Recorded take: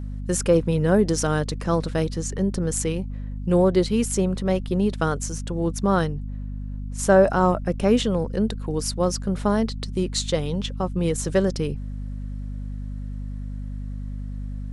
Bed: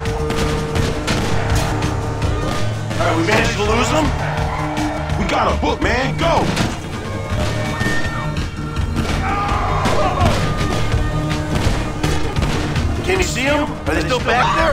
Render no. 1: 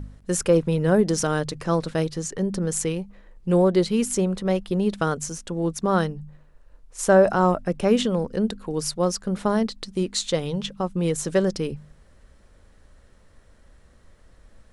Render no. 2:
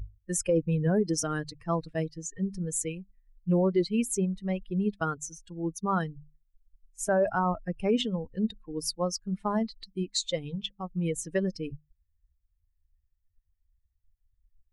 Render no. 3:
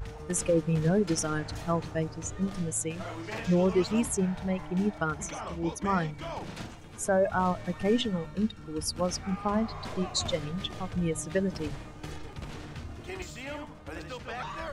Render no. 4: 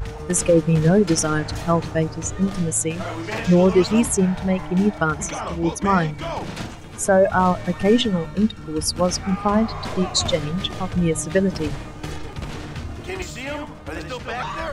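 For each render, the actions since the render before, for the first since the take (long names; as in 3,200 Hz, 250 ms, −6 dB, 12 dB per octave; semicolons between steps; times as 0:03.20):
hum removal 50 Hz, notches 5
spectral dynamics exaggerated over time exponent 2; brickwall limiter −16.5 dBFS, peak gain reduction 9 dB
mix in bed −22.5 dB
level +9.5 dB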